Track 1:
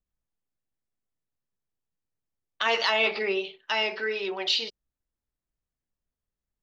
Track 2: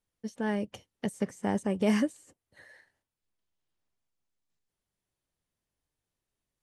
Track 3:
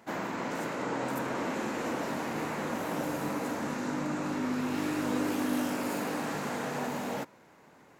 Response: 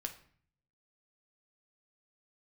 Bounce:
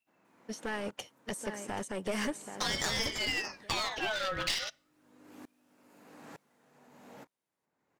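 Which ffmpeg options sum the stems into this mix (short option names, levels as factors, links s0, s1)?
-filter_complex "[0:a]highshelf=f=5000:g=6.5,acompressor=threshold=0.0501:ratio=12,aeval=exprs='val(0)*sin(2*PI*1800*n/s+1800*0.5/0.34*sin(2*PI*0.34*n/s))':c=same,volume=1.12,asplit=3[s0][s1][s2];[s1]volume=0.188[s3];[1:a]highpass=f=720:p=1,acontrast=78,alimiter=limit=0.0944:level=0:latency=1:release=231,adelay=250,volume=1,asplit=2[s4][s5];[s5]volume=0.299[s6];[2:a]acompressor=threshold=0.0251:ratio=6,aeval=exprs='val(0)*pow(10,-29*if(lt(mod(-1.1*n/s,1),2*abs(-1.1)/1000),1-mod(-1.1*n/s,1)/(2*abs(-1.1)/1000),(mod(-1.1*n/s,1)-2*abs(-1.1)/1000)/(1-2*abs(-1.1)/1000))/20)':c=same,volume=0.282[s7];[s2]apad=whole_len=352669[s8];[s7][s8]sidechaincompress=threshold=0.00891:ratio=8:attack=33:release=963[s9];[3:a]atrim=start_sample=2205[s10];[s3][s10]afir=irnorm=-1:irlink=0[s11];[s6]aecho=0:1:781|1562|2343:1|0.17|0.0289[s12];[s0][s4][s9][s11][s12]amix=inputs=5:normalize=0,aeval=exprs='clip(val(0),-1,0.0237)':c=same"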